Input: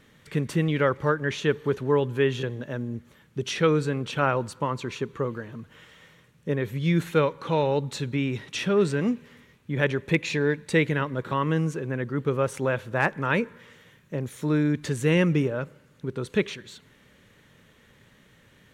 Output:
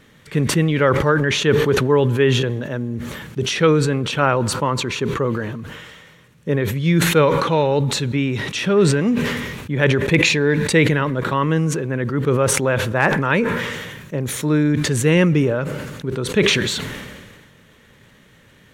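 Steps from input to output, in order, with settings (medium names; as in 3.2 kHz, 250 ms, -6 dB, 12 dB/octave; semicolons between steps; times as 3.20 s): decay stretcher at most 34 dB/s; trim +6 dB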